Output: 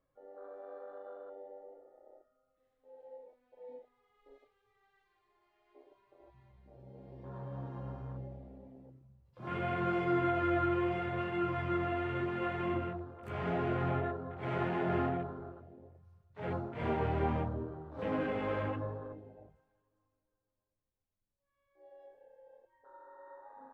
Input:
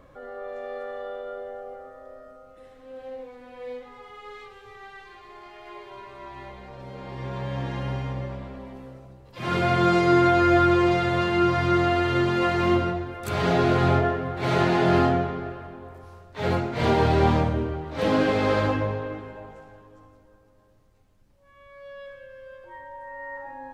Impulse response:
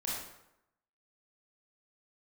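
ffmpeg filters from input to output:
-af "afwtdn=0.0224,flanger=delay=5.9:depth=9.5:regen=-56:speed=0.79:shape=triangular,volume=-8.5dB"

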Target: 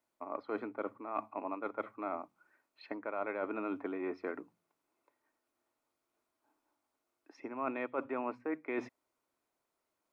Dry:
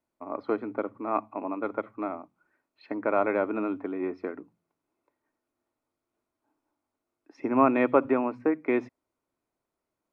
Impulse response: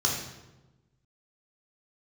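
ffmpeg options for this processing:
-af "lowshelf=f=350:g=-11,areverse,acompressor=threshold=-36dB:ratio=8,areverse,volume=2.5dB"

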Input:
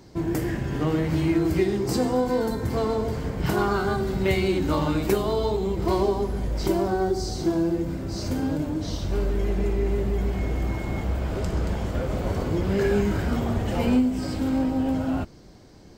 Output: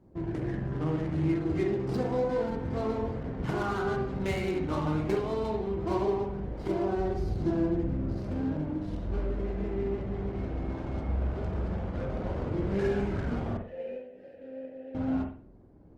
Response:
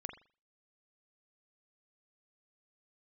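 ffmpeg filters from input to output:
-filter_complex "[0:a]asettb=1/sr,asplit=3[a][b][c];[a]atrim=end=6.994[d];[b]atrim=start=6.99:end=8.13,asetpts=PTS-STARTPTS,afade=t=in:d=0.004:c=qsin,afade=t=out:st=1.136:d=0.004:c=qsin,lowshelf=f=160:g=9.5[e];[c]atrim=start=8.126[f];[d][e]acrossfade=d=0.004:c1=hsin:c2=qsin[g];[g][f]acrossfade=d=0.004:c1=qsin:c2=hsin,adynamicsmooth=sensitivity=5:basefreq=690,asettb=1/sr,asplit=3[h][i][j];[h]atrim=end=13.574[k];[i]atrim=start=13.57:end=14.95,asetpts=PTS-STARTPTS,afade=t=in:d=0.004:c=qsin,afade=t=out:st=1.376:d=0.004:c=qsin,asplit=3[l][m][n];[l]bandpass=f=530:t=q:w=8,volume=0dB[o];[m]bandpass=f=1.84k:t=q:w=8,volume=-6dB[p];[n]bandpass=f=2.48k:t=q:w=8,volume=-9dB[q];[o][p][q]amix=inputs=3:normalize=0[r];[j]atrim=start=14.946[s];[k][r]acrossfade=d=0.004:c1=hsin:c2=qsin[t];[t][s]acrossfade=d=0.004:c1=qsin:c2=hsin[u];[1:a]atrim=start_sample=2205,asetrate=39690,aresample=44100[v];[u][v]afir=irnorm=-1:irlink=0,volume=-4dB" -ar 48000 -c:a libopus -b:a 24k

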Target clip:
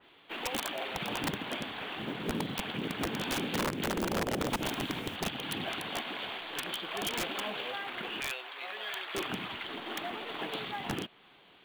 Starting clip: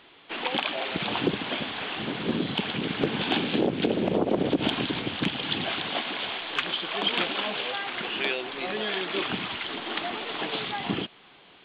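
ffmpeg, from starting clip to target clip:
-filter_complex "[0:a]asettb=1/sr,asplit=3[a][b][c];[a]atrim=end=8.204[d];[b]atrim=start=8.2:end=9.15,asetpts=PTS-STARTPTS,afade=t=in:d=0.004:c=qsin,afade=t=out:st=0.946:d=0.004:c=qsin,highpass=810[e];[c]atrim=start=9.146[f];[d][e]acrossfade=d=0.004:c1=hsin:c2=qsin[g];[g][f]acrossfade=d=0.004:c1=qsin:c2=hsin,acrusher=bits=6:mode=log:mix=0:aa=0.000001,aeval=exprs='(mod(8.41*val(0)+1,2)-1)/8.41':c=same,asettb=1/sr,asplit=3[h][i][j];[h]atrim=end=4.464[k];[i]atrim=start=4.46:end=5.16,asetpts=PTS-STARTPTS,afade=t=in:d=0.004:c=qsin,afade=t=out:st=0.696:d=0.004:c=qsin,acrusher=bits=8:dc=4:mix=0:aa=0.000001[l];[j]atrim=start=5.156[m];[k][l]acrossfade=d=0.004:c1=hsin:c2=qsin[n];[n][m]acrossfade=d=0.004:c1=qsin:c2=hsin,adynamicequalizer=threshold=0.00794:dfrequency=2600:dqfactor=0.7:tfrequency=2600:tqfactor=0.7:attack=5:release=100:ratio=0.375:range=1.5:mode=cutabove:tftype=highshelf,volume=-5.5dB"

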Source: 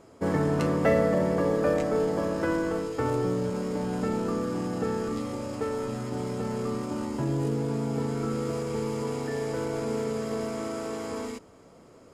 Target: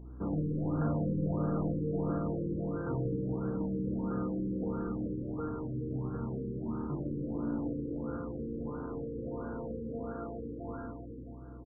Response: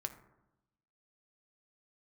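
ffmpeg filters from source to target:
-filter_complex "[0:a]equalizer=f=590:w=2.2:g=-14,asoftclip=type=tanh:threshold=-27.5dB,asplit=2[a][b];[b]acrusher=samples=29:mix=1:aa=0.000001,volume=-10dB[c];[a][c]amix=inputs=2:normalize=0,flanger=delay=7.5:depth=6.9:regen=79:speed=1.6:shape=sinusoidal,aeval=exprs='val(0)+0.00501*(sin(2*PI*60*n/s)+sin(2*PI*2*60*n/s)/2+sin(2*PI*3*60*n/s)/3+sin(2*PI*4*60*n/s)/4+sin(2*PI*5*60*n/s)/5)':c=same,asetrate=45938,aresample=44100,asplit=2[d][e];[e]adelay=45,volume=-6dB[f];[d][f]amix=inputs=2:normalize=0,asplit=2[g][h];[h]adelay=425,lowpass=f=1.6k:p=1,volume=-5dB,asplit=2[i][j];[j]adelay=425,lowpass=f=1.6k:p=1,volume=0.44,asplit=2[k][l];[l]adelay=425,lowpass=f=1.6k:p=1,volume=0.44,asplit=2[m][n];[n]adelay=425,lowpass=f=1.6k:p=1,volume=0.44,asplit=2[o][p];[p]adelay=425,lowpass=f=1.6k:p=1,volume=0.44[q];[g][i][k][m][o][q]amix=inputs=6:normalize=0,afftfilt=real='re*lt(b*sr/1024,510*pow(1700/510,0.5+0.5*sin(2*PI*1.5*pts/sr)))':imag='im*lt(b*sr/1024,510*pow(1700/510,0.5+0.5*sin(2*PI*1.5*pts/sr)))':win_size=1024:overlap=0.75"

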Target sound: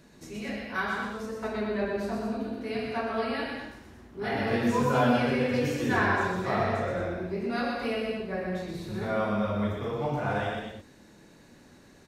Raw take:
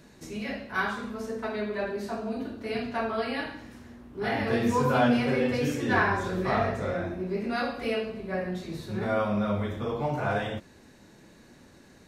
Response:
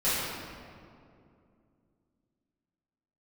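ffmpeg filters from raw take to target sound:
-filter_complex "[0:a]asettb=1/sr,asplit=3[a][b][c];[a]atrim=end=1.424[d];[b]atrim=start=1.42:end=2.37,asetpts=PTS-STARTPTS,afade=t=in:d=0.004:c=qsin,afade=t=out:st=0.946:d=0.004:c=qsin,lowshelf=f=260:g=6[e];[c]atrim=start=2.366[f];[d][e]acrossfade=d=0.004:c1=hsin:c2=qsin[g];[g][f]acrossfade=d=0.004:c1=qsin:c2=hsin,aecho=1:1:122.4|218.7:0.631|0.447,volume=-2.5dB"

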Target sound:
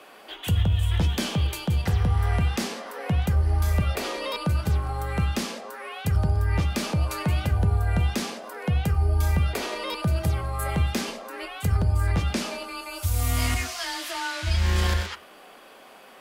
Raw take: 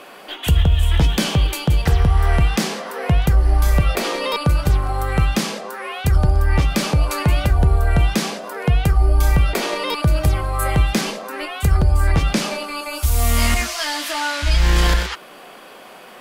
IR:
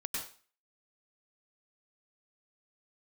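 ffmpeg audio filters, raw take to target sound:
-filter_complex "[0:a]afreqshift=20,bandreject=f=121:t=h:w=4,bandreject=f=242:t=h:w=4,bandreject=f=363:t=h:w=4,bandreject=f=484:t=h:w=4,bandreject=f=605:t=h:w=4,bandreject=f=726:t=h:w=4,bandreject=f=847:t=h:w=4,bandreject=f=968:t=h:w=4,bandreject=f=1.089k:t=h:w=4,bandreject=f=1.21k:t=h:w=4,bandreject=f=1.331k:t=h:w=4,bandreject=f=1.452k:t=h:w=4,bandreject=f=1.573k:t=h:w=4,bandreject=f=1.694k:t=h:w=4,bandreject=f=1.815k:t=h:w=4,bandreject=f=1.936k:t=h:w=4,bandreject=f=2.057k:t=h:w=4,bandreject=f=2.178k:t=h:w=4,bandreject=f=2.299k:t=h:w=4,bandreject=f=2.42k:t=h:w=4,bandreject=f=2.541k:t=h:w=4,bandreject=f=2.662k:t=h:w=4,bandreject=f=2.783k:t=h:w=4,bandreject=f=2.904k:t=h:w=4,bandreject=f=3.025k:t=h:w=4,bandreject=f=3.146k:t=h:w=4,bandreject=f=3.267k:t=h:w=4,asplit=2[a][b];[1:a]atrim=start_sample=2205,afade=t=out:st=0.14:d=0.01,atrim=end_sample=6615[c];[b][c]afir=irnorm=-1:irlink=0,volume=-13dB[d];[a][d]amix=inputs=2:normalize=0,volume=-9dB"

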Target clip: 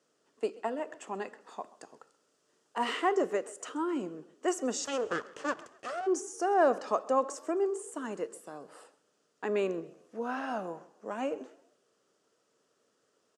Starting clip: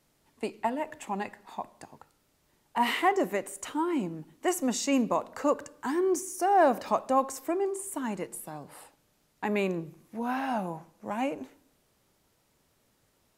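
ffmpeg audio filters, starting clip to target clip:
-filter_complex "[0:a]asettb=1/sr,asplit=3[a][b][c];[a]atrim=end=1.414[d];[b]atrim=start=1.41:end=2.84,asetpts=PTS-STARTPTS,afade=t=in:d=0.004:c=qsin,afade=t=out:st=1.426:d=0.004:c=qsin,highshelf=f=5k:g=5[e];[c]atrim=start=2.836[f];[d][e]acrossfade=d=0.004:c1=hsin:c2=qsin[g];[g][f]acrossfade=d=0.004:c1=qsin:c2=hsin,asplit=3[h][i][j];[h]afade=t=out:st=4.84:d=0.02[k];[i]aeval=exprs='abs(val(0))':c=same,afade=t=in:st=4.84:d=0.02,afade=t=out:st=6.06:d=0.02[l];[j]afade=t=in:st=6.06:d=0.02[m];[k][l][m]amix=inputs=3:normalize=0,highpass=300,equalizer=f=450:t=q:w=4:g=7,equalizer=f=870:t=q:w=4:g=-8,equalizer=f=1.3k:t=q:w=4:g=4,equalizer=f=2.2k:t=q:w=4:g=-9,equalizer=f=3.9k:t=q:w=4:g=-6,lowpass=f=8k:w=0.5412,lowpass=f=8k:w=1.3066,asplit=2[n][o];[o]asplit=3[p][q][r];[p]adelay=131,afreqshift=43,volume=-21.5dB[s];[q]adelay=262,afreqshift=86,volume=-30.6dB[t];[r]adelay=393,afreqshift=129,volume=-39.7dB[u];[s][t][u]amix=inputs=3:normalize=0[v];[n][v]amix=inputs=2:normalize=0,volume=-1.5dB"

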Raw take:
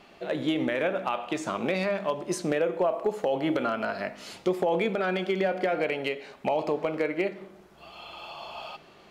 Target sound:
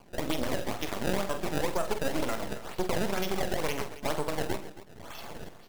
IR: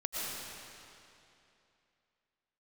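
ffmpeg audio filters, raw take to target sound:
-filter_complex "[0:a]highshelf=f=2.9k:t=q:w=1.5:g=7,acrusher=samples=23:mix=1:aa=0.000001:lfo=1:lforange=36.8:lforate=1.3,atempo=1.6,aeval=exprs='max(val(0),0)':c=same,asplit=2[a][b];[b]aecho=0:1:46|127|273:0.299|0.158|0.168[c];[a][c]amix=inputs=2:normalize=0"

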